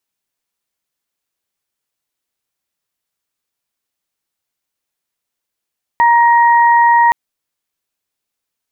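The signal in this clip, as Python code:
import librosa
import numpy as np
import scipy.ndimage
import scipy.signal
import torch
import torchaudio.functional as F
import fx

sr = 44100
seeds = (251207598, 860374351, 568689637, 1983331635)

y = fx.additive_steady(sr, length_s=1.12, hz=941.0, level_db=-7.0, upper_db=(-8.0,))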